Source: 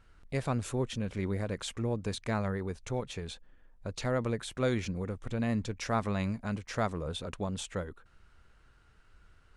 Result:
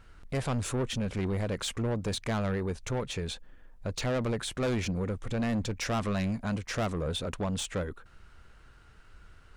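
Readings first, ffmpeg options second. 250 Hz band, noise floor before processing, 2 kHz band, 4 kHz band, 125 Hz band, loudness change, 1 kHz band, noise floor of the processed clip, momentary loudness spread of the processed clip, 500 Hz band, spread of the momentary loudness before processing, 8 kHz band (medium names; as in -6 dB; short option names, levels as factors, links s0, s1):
+2.0 dB, -62 dBFS, +2.5 dB, +5.0 dB, +2.0 dB, +2.0 dB, +0.5 dB, -56 dBFS, 6 LU, +1.5 dB, 7 LU, +5.0 dB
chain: -af "asoftclip=type=tanh:threshold=0.0251,volume=2.11"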